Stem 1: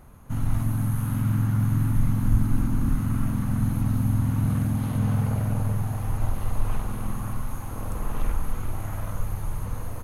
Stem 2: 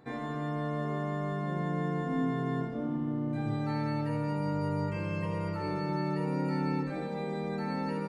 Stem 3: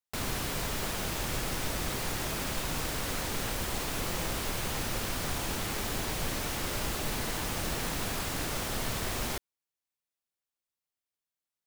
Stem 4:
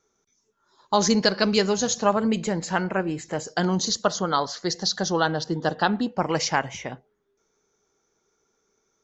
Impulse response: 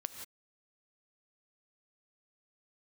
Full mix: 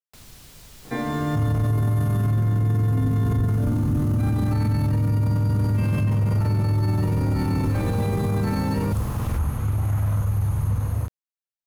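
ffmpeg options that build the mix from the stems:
-filter_complex "[0:a]highpass=62,equalizer=frequency=90:width_type=o:width=1.7:gain=13,adelay=1050,volume=-5dB[link_01];[1:a]acrossover=split=350|3000[link_02][link_03][link_04];[link_03]acompressor=threshold=-40dB:ratio=6[link_05];[link_02][link_05][link_04]amix=inputs=3:normalize=0,adelay=850,volume=1.5dB,asplit=2[link_06][link_07];[link_07]volume=-4dB[link_08];[2:a]acrossover=split=170|3000[link_09][link_10][link_11];[link_10]acompressor=threshold=-44dB:ratio=6[link_12];[link_09][link_12][link_11]amix=inputs=3:normalize=0,volume=-17.5dB[link_13];[4:a]atrim=start_sample=2205[link_14];[link_08][link_14]afir=irnorm=-1:irlink=0[link_15];[link_01][link_06][link_13][link_15]amix=inputs=4:normalize=0,acontrast=76,alimiter=limit=-16dB:level=0:latency=1:release=16"

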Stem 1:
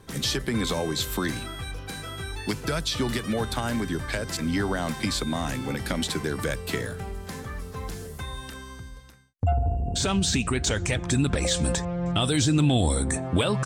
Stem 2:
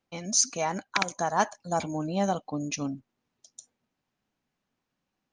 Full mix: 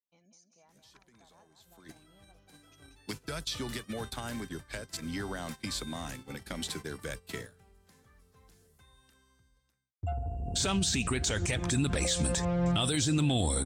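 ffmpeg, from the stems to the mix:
ffmpeg -i stem1.wav -i stem2.wav -filter_complex "[0:a]highshelf=frequency=2700:gain=5.5,adelay=600,afade=type=in:start_time=1.57:duration=0.77:silence=0.281838,afade=type=in:start_time=10.32:duration=0.79:silence=0.281838[link_01];[1:a]acompressor=threshold=-32dB:ratio=6,volume=-13dB,asplit=2[link_02][link_03];[link_03]volume=-7.5dB,aecho=0:1:188|376|564|752|940:1|0.35|0.122|0.0429|0.015[link_04];[link_01][link_02][link_04]amix=inputs=3:normalize=0,agate=range=-16dB:threshold=-39dB:ratio=16:detection=peak,alimiter=limit=-20dB:level=0:latency=1:release=95" out.wav

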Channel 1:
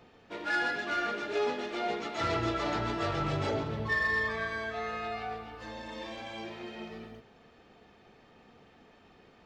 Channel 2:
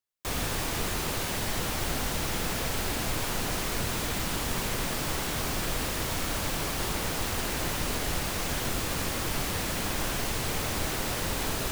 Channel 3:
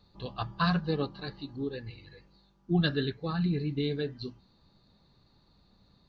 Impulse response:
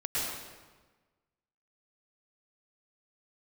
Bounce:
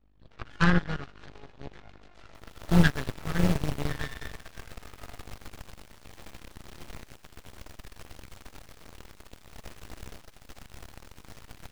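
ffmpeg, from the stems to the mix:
-filter_complex "[0:a]volume=1dB,asplit=2[link_01][link_02];[link_02]volume=-20dB[link_03];[1:a]highshelf=frequency=6600:gain=-6.5,adelay=2100,volume=-7.5dB,asplit=2[link_04][link_05];[link_05]volume=-6.5dB[link_06];[2:a]equalizer=frequency=160:width_type=o:width=0.67:gain=10,equalizer=frequency=630:width_type=o:width=0.67:gain=-8,equalizer=frequency=1600:width_type=o:width=0.67:gain=12,equalizer=frequency=4000:width_type=o:width=0.67:gain=-5,aeval=exprs='val(0)+0.0126*(sin(2*PI*50*n/s)+sin(2*PI*2*50*n/s)/2+sin(2*PI*3*50*n/s)/3+sin(2*PI*4*50*n/s)/4+sin(2*PI*5*50*n/s)/5)':channel_layout=same,volume=-4.5dB[link_07];[link_01][link_04]amix=inputs=2:normalize=0,acompressor=threshold=-41dB:ratio=3,volume=0dB[link_08];[3:a]atrim=start_sample=2205[link_09];[link_03][link_06]amix=inputs=2:normalize=0[link_10];[link_10][link_09]afir=irnorm=-1:irlink=0[link_11];[link_07][link_08][link_11]amix=inputs=3:normalize=0,aeval=exprs='0.282*(cos(1*acos(clip(val(0)/0.282,-1,1)))-cos(1*PI/2))+0.0447*(cos(4*acos(clip(val(0)/0.282,-1,1)))-cos(4*PI/2))+0.0398*(cos(7*acos(clip(val(0)/0.282,-1,1)))-cos(7*PI/2))':channel_layout=same,lowshelf=frequency=100:gain=9"

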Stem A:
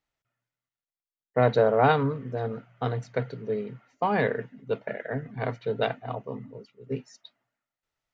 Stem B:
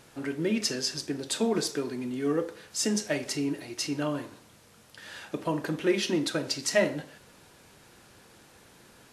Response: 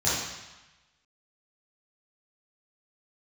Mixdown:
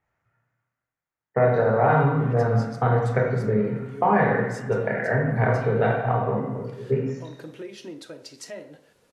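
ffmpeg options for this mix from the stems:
-filter_complex "[0:a]highshelf=frequency=2700:width_type=q:width=1.5:gain=-12.5,acompressor=threshold=-27dB:ratio=5,volume=2.5dB,asplit=3[link_01][link_02][link_03];[link_02]volume=-7dB[link_04];[1:a]equalizer=frequency=480:width_type=o:width=0.77:gain=7.5,alimiter=limit=-18dB:level=0:latency=1:release=317,adelay=1750,volume=-10.5dB[link_05];[link_03]apad=whole_len=479457[link_06];[link_05][link_06]sidechaincompress=threshold=-36dB:ratio=4:attack=16:release=512[link_07];[2:a]atrim=start_sample=2205[link_08];[link_04][link_08]afir=irnorm=-1:irlink=0[link_09];[link_01][link_07][link_09]amix=inputs=3:normalize=0"

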